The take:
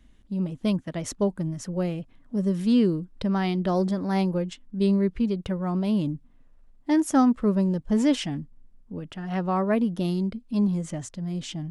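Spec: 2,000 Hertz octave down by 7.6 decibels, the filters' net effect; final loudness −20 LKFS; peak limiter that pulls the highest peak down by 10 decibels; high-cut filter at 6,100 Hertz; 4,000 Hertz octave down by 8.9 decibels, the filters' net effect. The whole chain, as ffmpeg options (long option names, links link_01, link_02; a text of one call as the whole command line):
ffmpeg -i in.wav -af "lowpass=6100,equalizer=frequency=2000:width_type=o:gain=-7.5,equalizer=frequency=4000:width_type=o:gain=-8.5,volume=10dB,alimiter=limit=-11dB:level=0:latency=1" out.wav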